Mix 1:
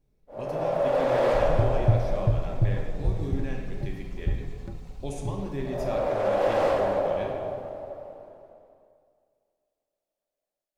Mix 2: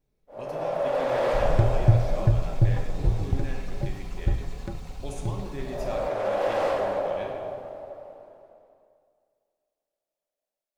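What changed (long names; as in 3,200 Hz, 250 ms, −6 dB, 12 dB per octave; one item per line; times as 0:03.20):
second sound +9.0 dB
master: add low-shelf EQ 370 Hz −6.5 dB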